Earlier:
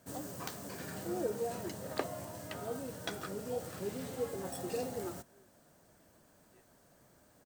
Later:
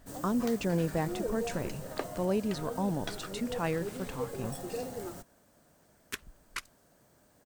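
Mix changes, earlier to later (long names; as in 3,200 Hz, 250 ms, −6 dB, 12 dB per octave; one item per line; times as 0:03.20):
speech: unmuted
second sound: entry −2.25 s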